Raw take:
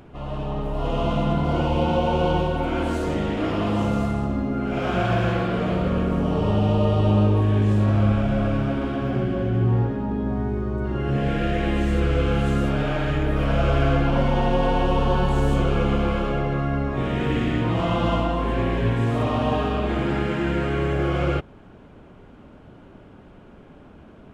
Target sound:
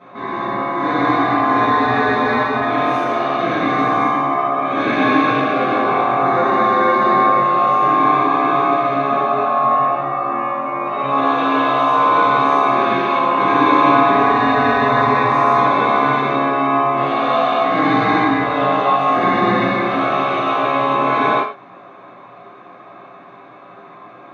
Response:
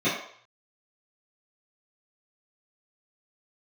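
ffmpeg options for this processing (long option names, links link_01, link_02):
-filter_complex "[0:a]aeval=exprs='val(0)*sin(2*PI*970*n/s)':channel_layout=same[link_01];[1:a]atrim=start_sample=2205,atrim=end_sample=6615[link_02];[link_01][link_02]afir=irnorm=-1:irlink=0,volume=-5dB"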